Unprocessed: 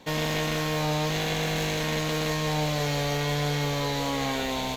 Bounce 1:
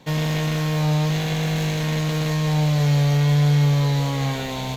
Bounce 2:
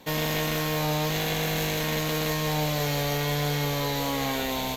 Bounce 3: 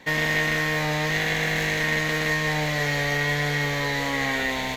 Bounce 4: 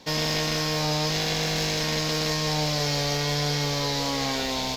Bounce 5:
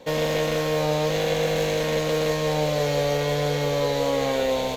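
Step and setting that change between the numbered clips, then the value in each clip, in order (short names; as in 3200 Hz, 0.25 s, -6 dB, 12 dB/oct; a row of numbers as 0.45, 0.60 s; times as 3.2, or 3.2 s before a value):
bell, frequency: 140, 14000, 1900, 5100, 520 Hz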